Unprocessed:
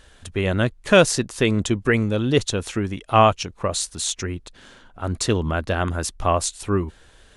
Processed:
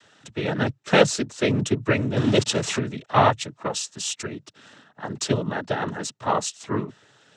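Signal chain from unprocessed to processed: 2.16–2.78 zero-crossing step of -21.5 dBFS; noise vocoder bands 12; gain -2 dB

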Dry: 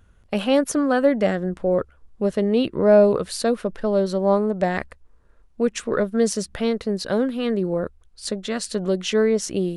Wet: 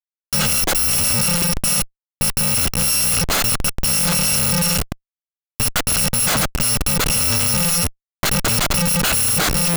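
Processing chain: FFT order left unsorted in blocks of 128 samples; Schmitt trigger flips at -31.5 dBFS; gain +4.5 dB

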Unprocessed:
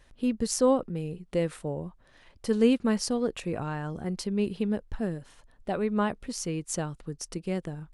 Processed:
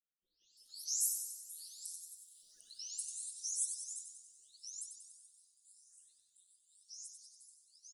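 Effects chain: spectral delay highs late, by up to 0.597 s; Doppler pass-by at 2.05, 16 m/s, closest 9.2 m; spectral gate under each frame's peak -20 dB weak; inverse Chebyshev high-pass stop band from 2500 Hz, stop band 50 dB; on a send: frequency-shifting echo 94 ms, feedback 59%, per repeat -63 Hz, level -7 dB; on the sum: gain +18 dB

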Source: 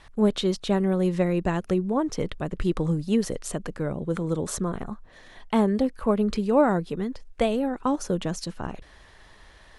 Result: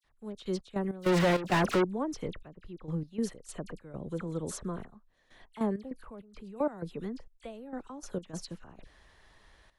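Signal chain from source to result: 1.01–1.8 overdrive pedal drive 42 dB, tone 2700 Hz, clips at -9.5 dBFS; 2.32–3.2 bell 8300 Hz -14.5 dB 0.68 oct; 6.01–6.78 level quantiser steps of 18 dB; dispersion lows, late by 46 ms, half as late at 2600 Hz; step gate "...x.x.xx.xxxxxx" 99 bpm -12 dB; gain -8.5 dB

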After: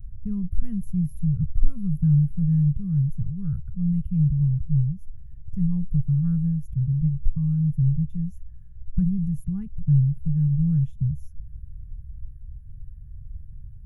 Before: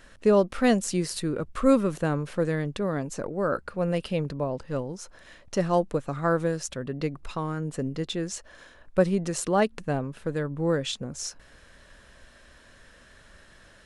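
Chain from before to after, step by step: inverse Chebyshev band-stop 270–9000 Hz, stop band 40 dB; tone controls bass +13 dB, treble -1 dB; gain +7 dB

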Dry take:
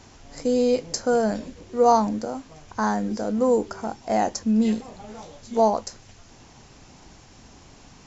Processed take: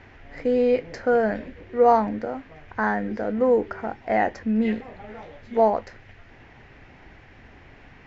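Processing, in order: EQ curve 110 Hz 0 dB, 180 Hz -5 dB, 420 Hz 0 dB, 740 Hz -1 dB, 1100 Hz -4 dB, 1900 Hz +9 dB, 7600 Hz -28 dB; gain +1.5 dB

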